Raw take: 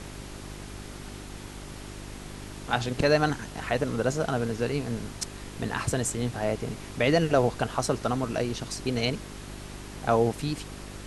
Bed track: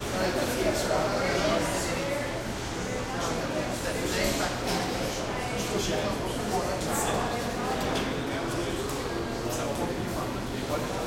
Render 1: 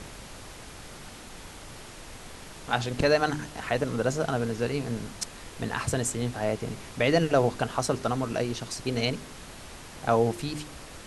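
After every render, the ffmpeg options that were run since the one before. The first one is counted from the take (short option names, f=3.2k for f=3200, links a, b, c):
-af "bandreject=f=50:t=h:w=4,bandreject=f=100:t=h:w=4,bandreject=f=150:t=h:w=4,bandreject=f=200:t=h:w=4,bandreject=f=250:t=h:w=4,bandreject=f=300:t=h:w=4,bandreject=f=350:t=h:w=4,bandreject=f=400:t=h:w=4"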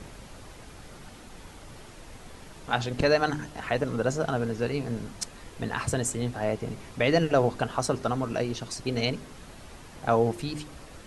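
-af "afftdn=nr=6:nf=-45"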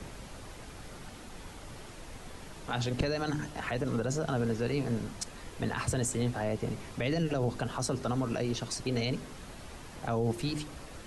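-filter_complex "[0:a]acrossover=split=390|3000[a][b][c];[b]acompressor=threshold=-31dB:ratio=2.5[d];[a][d][c]amix=inputs=3:normalize=0,acrossover=split=120[e][f];[f]alimiter=limit=-23dB:level=0:latency=1:release=35[g];[e][g]amix=inputs=2:normalize=0"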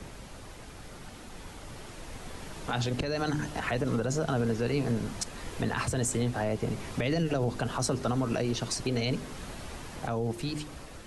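-af "alimiter=level_in=1.5dB:limit=-24dB:level=0:latency=1:release=310,volume=-1.5dB,dynaudnorm=f=890:g=5:m=6dB"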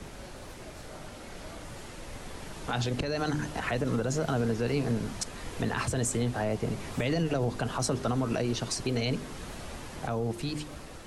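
-filter_complex "[1:a]volume=-22dB[a];[0:a][a]amix=inputs=2:normalize=0"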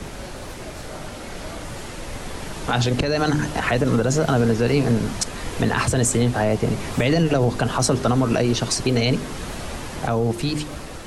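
-af "volume=10dB"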